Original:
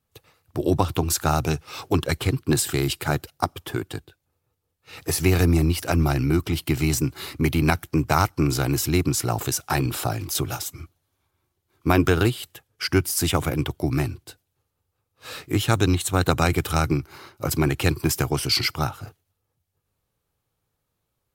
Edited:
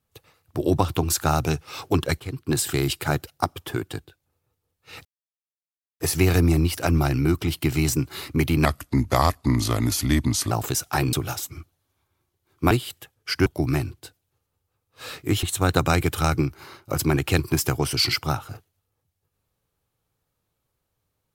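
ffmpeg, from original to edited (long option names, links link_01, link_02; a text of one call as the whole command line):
ffmpeg -i in.wav -filter_complex "[0:a]asplit=9[link_01][link_02][link_03][link_04][link_05][link_06][link_07][link_08][link_09];[link_01]atrim=end=2.2,asetpts=PTS-STARTPTS,afade=type=out:start_time=2.196:duration=0.004:curve=hsin:silence=0.16788[link_10];[link_02]atrim=start=2.2:end=5.05,asetpts=PTS-STARTPTS,afade=type=in:duration=0.48:silence=0.16788,afade=type=out:start_time=2.846:duration=0.004:curve=hsin,apad=pad_dur=0.95[link_11];[link_03]atrim=start=5.05:end=7.704,asetpts=PTS-STARTPTS,afade=type=in:duration=0.004:curve=hsin[link_12];[link_04]atrim=start=7.7:end=9.28,asetpts=PTS-STARTPTS,asetrate=37485,aresample=44100,atrim=end_sample=81974,asetpts=PTS-STARTPTS[link_13];[link_05]atrim=start=9.276:end=9.902[link_14];[link_06]atrim=start=10.358:end=11.942[link_15];[link_07]atrim=start=12.238:end=12.992[link_16];[link_08]atrim=start=13.698:end=15.672[link_17];[link_09]atrim=start=15.948[link_18];[link_10][link_11][link_12]concat=n=3:v=0:a=1[link_19];[link_19][link_13]acrossfade=duration=0.004:curve1=hsin:curve2=hsin[link_20];[link_20][link_14]acrossfade=duration=0.004:curve1=hsin:curve2=hsin[link_21];[link_21][link_15]acrossfade=duration=0.004:curve1=hsin:curve2=hsin[link_22];[link_22][link_16]acrossfade=duration=0.004:curve1=hsin:curve2=hsin[link_23];[link_23][link_17]acrossfade=duration=0.004:curve1=hsin:curve2=hsin[link_24];[link_24][link_18]acrossfade=duration=0.004:curve1=hsin:curve2=hsin" out.wav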